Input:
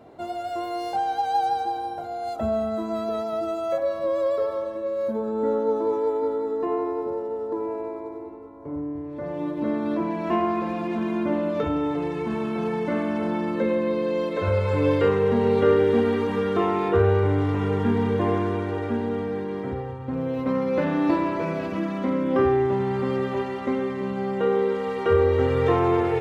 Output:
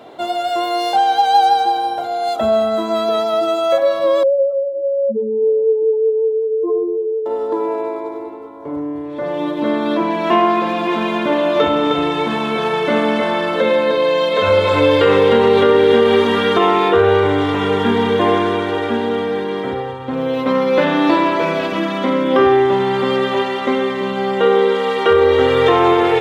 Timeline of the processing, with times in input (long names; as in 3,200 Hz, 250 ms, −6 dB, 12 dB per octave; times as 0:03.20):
0:04.23–0:07.26: expanding power law on the bin magnitudes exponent 4
0:10.56–0:16.58: single-tap delay 308 ms −5 dB
whole clip: high-pass filter 490 Hz 6 dB per octave; parametric band 3,400 Hz +9.5 dB 0.41 octaves; boost into a limiter +15 dB; level −2.5 dB